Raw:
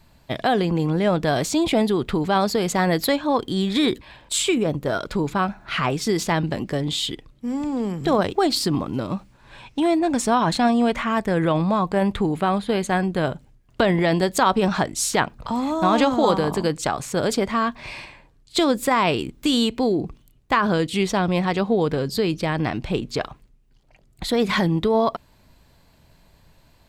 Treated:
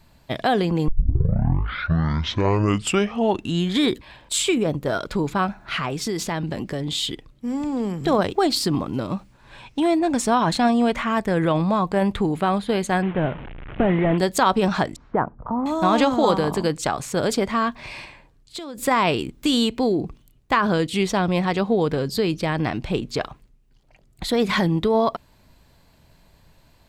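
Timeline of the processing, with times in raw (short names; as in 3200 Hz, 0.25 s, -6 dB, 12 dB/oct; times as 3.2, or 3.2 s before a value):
0.88 tape start 2.99 s
5.76–6.95 compressor 2.5:1, threshold -23 dBFS
13.02–14.18 delta modulation 16 kbps, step -29.5 dBFS
14.96–15.66 LPF 1300 Hz 24 dB/oct
17.85–18.78 compressor, threshold -31 dBFS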